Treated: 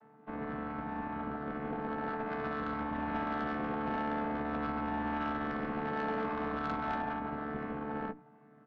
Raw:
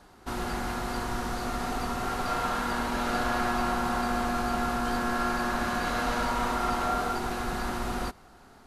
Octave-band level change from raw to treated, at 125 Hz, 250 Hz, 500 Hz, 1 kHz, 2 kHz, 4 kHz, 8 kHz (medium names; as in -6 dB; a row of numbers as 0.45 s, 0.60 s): -7.0 dB, -4.0 dB, -5.0 dB, -7.0 dB, -8.0 dB, -16.5 dB, under -35 dB